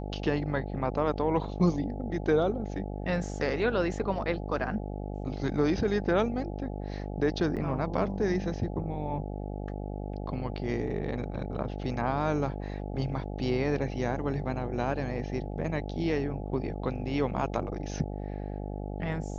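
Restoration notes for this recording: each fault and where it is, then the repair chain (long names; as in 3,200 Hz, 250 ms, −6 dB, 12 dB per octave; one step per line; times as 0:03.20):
mains buzz 50 Hz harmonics 17 −36 dBFS
0:07.56–0:07.57: drop-out 7.8 ms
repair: hum removal 50 Hz, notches 17
repair the gap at 0:07.56, 7.8 ms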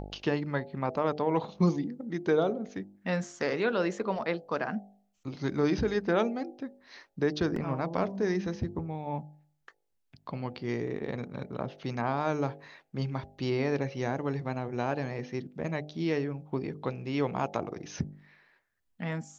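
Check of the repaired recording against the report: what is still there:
none of them is left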